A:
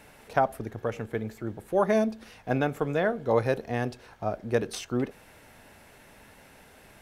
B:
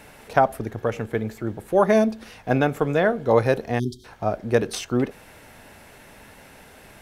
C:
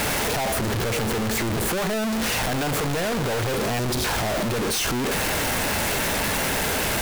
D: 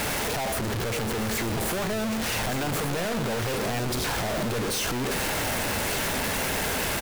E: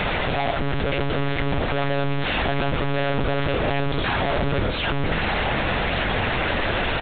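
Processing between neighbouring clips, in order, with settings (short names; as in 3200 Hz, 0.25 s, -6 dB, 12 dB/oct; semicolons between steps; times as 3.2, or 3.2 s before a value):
spectral delete 3.79–4.05, 430–3100 Hz; gain +6 dB
infinite clipping
echo 1.184 s -9 dB; gain -4 dB
monotone LPC vocoder at 8 kHz 140 Hz; gain +6 dB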